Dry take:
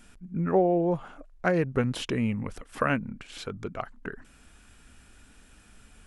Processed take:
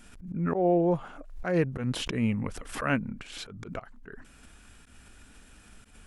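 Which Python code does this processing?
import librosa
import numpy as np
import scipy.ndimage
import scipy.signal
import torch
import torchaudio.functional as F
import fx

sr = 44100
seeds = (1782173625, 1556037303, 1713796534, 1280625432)

y = fx.auto_swell(x, sr, attack_ms=133.0)
y = fx.pre_swell(y, sr, db_per_s=80.0)
y = y * 10.0 ** (1.0 / 20.0)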